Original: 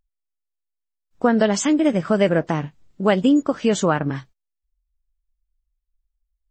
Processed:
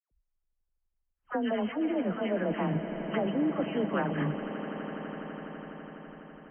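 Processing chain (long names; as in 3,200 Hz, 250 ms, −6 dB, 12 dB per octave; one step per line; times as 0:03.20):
frequency shifter +16 Hz
reversed playback
downward compressor 6 to 1, threshold −30 dBFS, peak gain reduction 17.5 dB
reversed playback
all-pass dispersion lows, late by 112 ms, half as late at 1,400 Hz
low-pass that shuts in the quiet parts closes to 1,500 Hz
linear-phase brick-wall low-pass 3,200 Hz
on a send: echo that builds up and dies away 83 ms, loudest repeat 8, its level −15.5 dB
on the sum: level +2 dB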